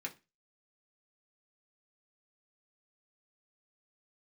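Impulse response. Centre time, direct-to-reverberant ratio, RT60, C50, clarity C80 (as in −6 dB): 8 ms, −1.0 dB, 0.25 s, 17.5 dB, 25.0 dB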